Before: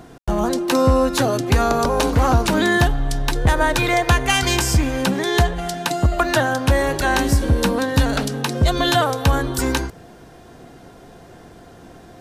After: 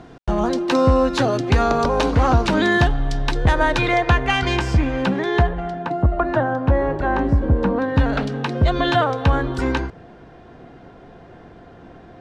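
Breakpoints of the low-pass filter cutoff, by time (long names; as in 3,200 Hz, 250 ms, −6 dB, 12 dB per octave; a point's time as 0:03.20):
0:03.68 4,600 Hz
0:04.18 2,800 Hz
0:05.13 2,800 Hz
0:05.91 1,200 Hz
0:07.61 1,200 Hz
0:08.22 2,800 Hz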